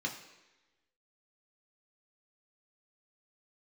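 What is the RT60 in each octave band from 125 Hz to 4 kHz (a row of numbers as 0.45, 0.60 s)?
0.85, 1.0, 1.1, 1.1, 1.2, 1.1 s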